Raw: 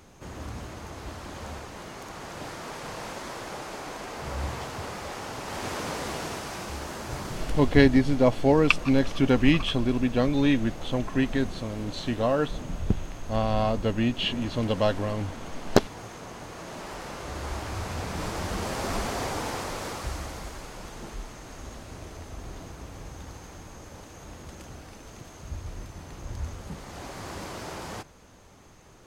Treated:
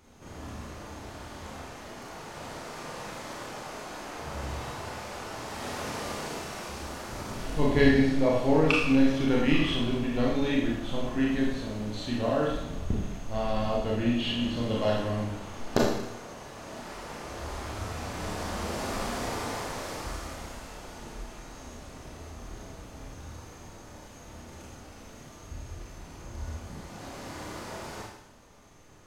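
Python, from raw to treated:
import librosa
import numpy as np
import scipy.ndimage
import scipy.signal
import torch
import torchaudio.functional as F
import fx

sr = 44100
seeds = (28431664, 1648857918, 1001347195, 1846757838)

y = fx.rev_schroeder(x, sr, rt60_s=0.84, comb_ms=26, drr_db=-4.0)
y = y * librosa.db_to_amplitude(-7.5)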